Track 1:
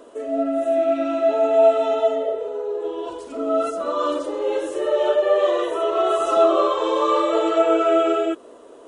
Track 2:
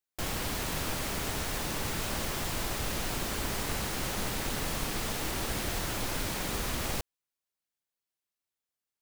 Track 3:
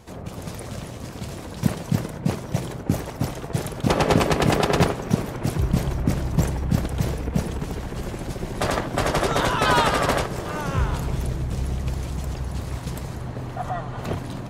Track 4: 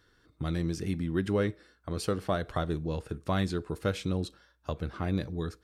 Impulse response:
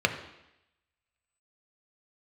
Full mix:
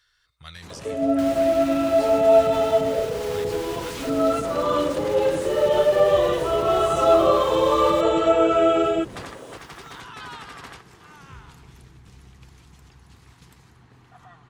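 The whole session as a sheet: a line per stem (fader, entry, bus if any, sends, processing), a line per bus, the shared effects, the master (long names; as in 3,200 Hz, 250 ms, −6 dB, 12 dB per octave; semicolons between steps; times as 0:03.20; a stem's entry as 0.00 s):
−1.5 dB, 0.70 s, no bus, no send, high-shelf EQ 3,500 Hz +8.5 dB; hollow resonant body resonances 260/530/810 Hz, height 6 dB
−1.0 dB, 1.00 s, bus A, no send, high-pass filter 44 Hz; upward compression, threshold −42 dBFS
0:09.12 −9 dB → 0:09.43 −21.5 dB, 0.55 s, bus A, no send, high-pass filter 50 Hz
−1.5 dB, 0.00 s, no bus, no send, guitar amp tone stack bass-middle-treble 10-0-10
bus A: 0.0 dB, parametric band 590 Hz −14.5 dB 0.38 octaves; brickwall limiter −25.5 dBFS, peak gain reduction 11.5 dB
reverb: not used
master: high-shelf EQ 7,400 Hz −9 dB; one half of a high-frequency compander encoder only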